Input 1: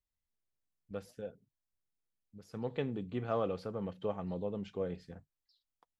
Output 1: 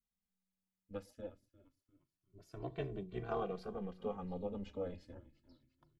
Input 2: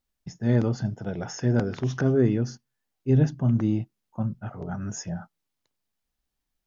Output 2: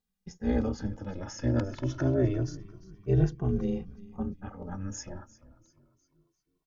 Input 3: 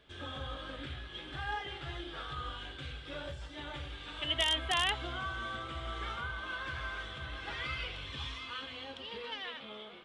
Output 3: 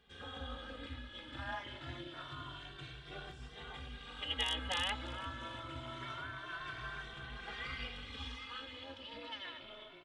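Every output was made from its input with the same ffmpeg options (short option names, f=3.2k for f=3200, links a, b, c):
-filter_complex "[0:a]asplit=5[a][b][c][d][e];[b]adelay=349,afreqshift=-110,volume=-18.5dB[f];[c]adelay=698,afreqshift=-220,volume=-25.4dB[g];[d]adelay=1047,afreqshift=-330,volume=-32.4dB[h];[e]adelay=1396,afreqshift=-440,volume=-39.3dB[i];[a][f][g][h][i]amix=inputs=5:normalize=0,tremolo=f=190:d=0.889,asplit=2[j][k];[k]adelay=2.1,afreqshift=0.26[l];[j][l]amix=inputs=2:normalize=1,volume=2dB"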